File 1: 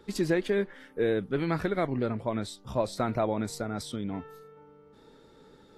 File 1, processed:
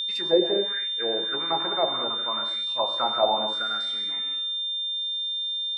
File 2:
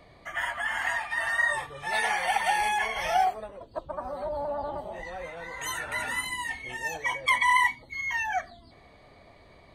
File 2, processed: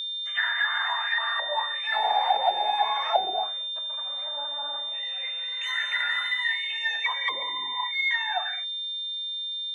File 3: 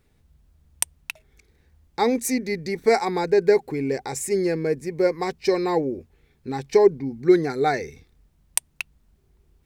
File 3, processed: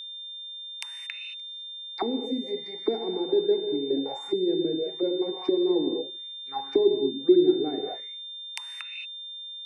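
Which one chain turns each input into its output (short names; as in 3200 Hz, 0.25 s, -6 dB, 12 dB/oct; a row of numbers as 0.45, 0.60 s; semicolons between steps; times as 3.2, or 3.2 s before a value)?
non-linear reverb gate 0.25 s flat, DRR 3 dB; auto-wah 320–4300 Hz, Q 4, down, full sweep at -18 dBFS; whine 3600 Hz -37 dBFS; normalise peaks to -9 dBFS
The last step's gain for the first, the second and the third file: +10.5, +7.5, +0.5 dB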